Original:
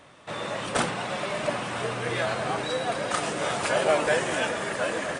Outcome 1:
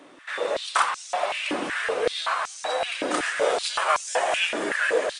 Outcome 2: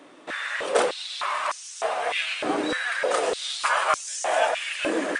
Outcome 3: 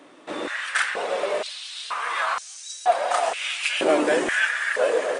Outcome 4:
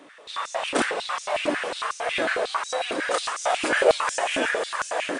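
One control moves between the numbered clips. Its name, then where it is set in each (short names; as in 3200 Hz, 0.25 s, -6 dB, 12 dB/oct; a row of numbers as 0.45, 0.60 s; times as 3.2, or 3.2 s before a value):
stepped high-pass, rate: 5.3, 3.3, 2.1, 11 Hz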